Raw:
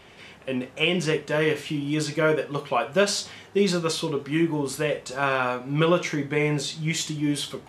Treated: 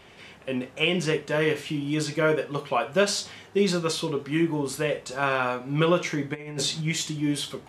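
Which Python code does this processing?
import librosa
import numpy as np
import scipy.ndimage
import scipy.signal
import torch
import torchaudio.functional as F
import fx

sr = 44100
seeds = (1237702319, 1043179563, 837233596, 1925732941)

y = fx.over_compress(x, sr, threshold_db=-29.0, ratio=-0.5, at=(6.33, 6.8), fade=0.02)
y = F.gain(torch.from_numpy(y), -1.0).numpy()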